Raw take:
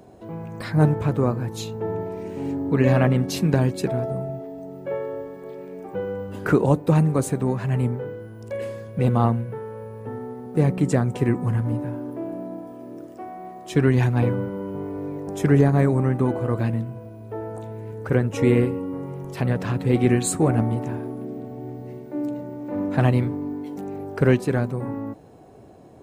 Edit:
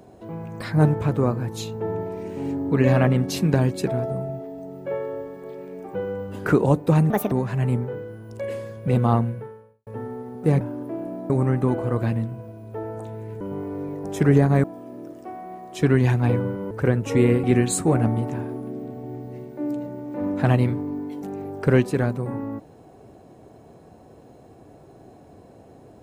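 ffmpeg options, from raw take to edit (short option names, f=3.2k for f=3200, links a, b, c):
-filter_complex "[0:a]asplit=10[a][b][c][d][e][f][g][h][i][j];[a]atrim=end=7.104[k];[b]atrim=start=7.1:end=7.43,asetpts=PTS-STARTPTS,asetrate=67032,aresample=44100,atrim=end_sample=9574,asetpts=PTS-STARTPTS[l];[c]atrim=start=7.426:end=9.98,asetpts=PTS-STARTPTS,afade=t=out:st=2.024:d=0.53:c=qua[m];[d]atrim=start=9.98:end=10.722,asetpts=PTS-STARTPTS,afade=t=in:d=0.004:c=hsin[n];[e]atrim=start=11.878:end=12.572[o];[f]atrim=start=15.868:end=17.982[p];[g]atrim=start=14.638:end=15.872[q];[h]atrim=start=12.568:end=14.642[r];[i]atrim=start=17.978:end=18.712[s];[j]atrim=start=19.978[t];[k][l]acrossfade=d=0.004:c1=hsin:c2=hsin[u];[m][n]concat=n=2:v=0:a=1[v];[u][v]acrossfade=d=0.004:c1=hsin:c2=hsin[w];[w][o]acrossfade=d=0.004:c1=hsin:c2=hsin[x];[x][p]acrossfade=d=0.004:c1=hsin:c2=hsin[y];[y][q]acrossfade=d=0.004:c1=hsin:c2=hsin[z];[z][r]acrossfade=d=0.004:c1=hsin:c2=hsin[aa];[aa][s]acrossfade=d=0.004:c1=hsin:c2=hsin[ab];[ab][t]acrossfade=d=0.004:c1=hsin:c2=hsin"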